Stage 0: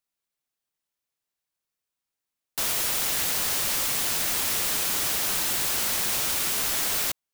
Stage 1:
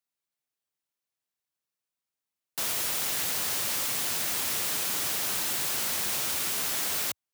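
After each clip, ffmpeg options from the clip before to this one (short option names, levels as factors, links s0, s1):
-af "highpass=f=78:w=0.5412,highpass=f=78:w=1.3066,volume=0.668"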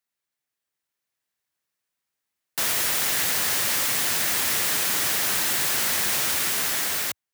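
-af "equalizer=f=1800:w=2.4:g=5,dynaudnorm=f=390:g=5:m=1.41,volume=1.33"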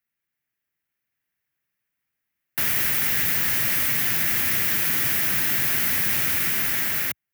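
-filter_complex "[0:a]acrossover=split=330|3000[s0][s1][s2];[s1]acompressor=threshold=0.0251:ratio=6[s3];[s0][s3][s2]amix=inputs=3:normalize=0,equalizer=f=125:t=o:w=1:g=3,equalizer=f=500:t=o:w=1:g=-6,equalizer=f=1000:t=o:w=1:g=-7,equalizer=f=2000:t=o:w=1:g=4,equalizer=f=4000:t=o:w=1:g=-9,equalizer=f=8000:t=o:w=1:g=-11,volume=1.78"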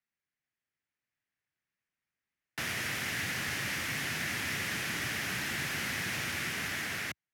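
-af "lowpass=6800,volume=0.531"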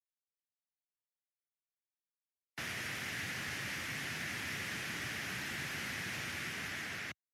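-af "afftdn=nr=18:nf=-50,volume=0.531"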